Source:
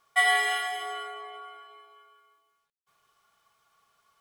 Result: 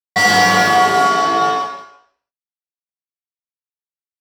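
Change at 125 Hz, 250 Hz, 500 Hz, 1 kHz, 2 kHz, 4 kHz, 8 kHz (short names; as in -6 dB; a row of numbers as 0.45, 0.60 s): n/a, +38.5 dB, +20.0 dB, +18.5 dB, +11.0 dB, +13.0 dB, +16.0 dB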